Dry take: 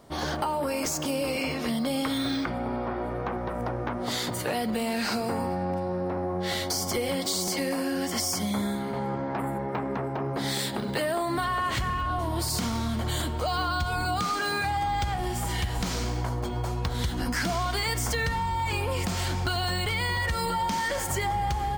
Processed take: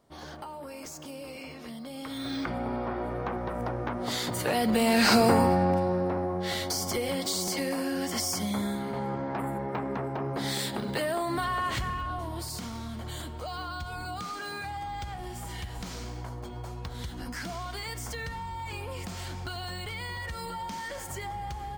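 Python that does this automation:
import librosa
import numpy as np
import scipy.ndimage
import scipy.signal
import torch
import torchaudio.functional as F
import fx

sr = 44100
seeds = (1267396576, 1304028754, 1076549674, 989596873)

y = fx.gain(x, sr, db=fx.line((1.92, -13.0), (2.51, -1.5), (4.24, -1.5), (5.22, 9.0), (6.43, -2.0), (11.67, -2.0), (12.6, -9.0)))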